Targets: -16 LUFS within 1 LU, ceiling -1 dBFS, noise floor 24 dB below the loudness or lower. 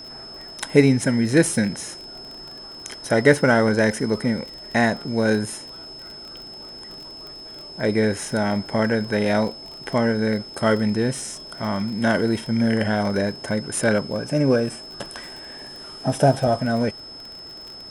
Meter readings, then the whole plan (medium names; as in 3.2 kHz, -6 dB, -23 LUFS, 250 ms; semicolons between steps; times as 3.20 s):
tick rate 27 per s; steady tone 5.2 kHz; tone level -37 dBFS; loudness -21.5 LUFS; peak level -1.5 dBFS; loudness target -16.0 LUFS
-> de-click; band-stop 5.2 kHz, Q 30; trim +5.5 dB; peak limiter -1 dBFS